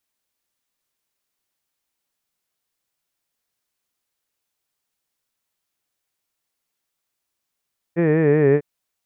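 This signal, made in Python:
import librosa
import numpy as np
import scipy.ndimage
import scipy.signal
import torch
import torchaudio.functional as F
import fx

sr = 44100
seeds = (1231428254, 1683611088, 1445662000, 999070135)

y = fx.formant_vowel(sr, seeds[0], length_s=0.65, hz=165.0, glide_st=-3.0, vibrato_hz=5.3, vibrato_st=0.9, f1_hz=420.0, f2_hz=1800.0, f3_hz=2400.0)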